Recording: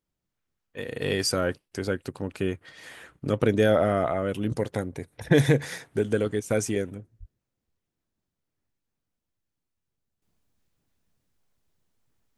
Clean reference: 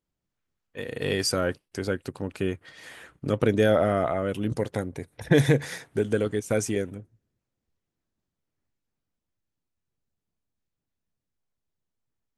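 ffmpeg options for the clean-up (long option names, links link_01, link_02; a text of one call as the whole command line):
ffmpeg -i in.wav -filter_complex "[0:a]asplit=3[link_01][link_02][link_03];[link_01]afade=type=out:start_time=7.19:duration=0.02[link_04];[link_02]highpass=frequency=140:width=0.5412,highpass=frequency=140:width=1.3066,afade=type=in:start_time=7.19:duration=0.02,afade=type=out:start_time=7.31:duration=0.02[link_05];[link_03]afade=type=in:start_time=7.31:duration=0.02[link_06];[link_04][link_05][link_06]amix=inputs=3:normalize=0,asetnsamples=nb_out_samples=441:pad=0,asendcmd='10.22 volume volume -10.5dB',volume=0dB" out.wav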